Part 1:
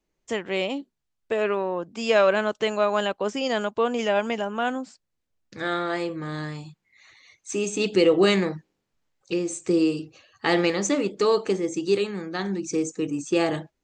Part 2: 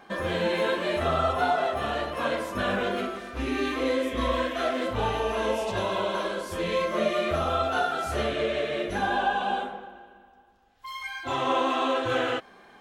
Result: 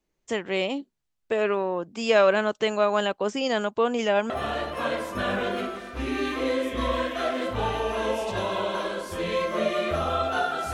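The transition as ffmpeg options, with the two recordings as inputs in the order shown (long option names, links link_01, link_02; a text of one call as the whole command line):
ffmpeg -i cue0.wav -i cue1.wav -filter_complex "[0:a]apad=whole_dur=10.73,atrim=end=10.73,atrim=end=4.302[link_01];[1:a]atrim=start=1.698:end=8.13[link_02];[link_01][link_02]acrossfade=duration=0.004:curve1=hsin:curve2=hsin" out.wav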